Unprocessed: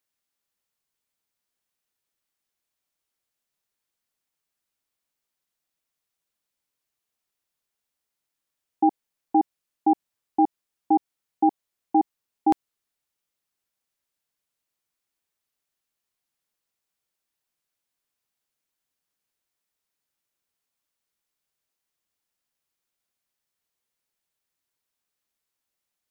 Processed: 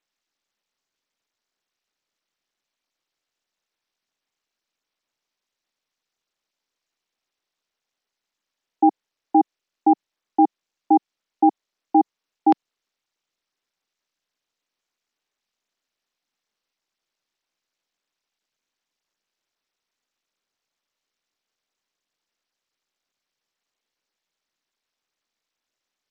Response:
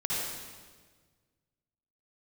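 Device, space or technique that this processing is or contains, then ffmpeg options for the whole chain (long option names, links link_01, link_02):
Bluetooth headset: -af "highpass=frequency=210:width=0.5412,highpass=frequency=210:width=1.3066,aresample=16000,aresample=44100,volume=4dB" -ar 32000 -c:a sbc -b:a 64k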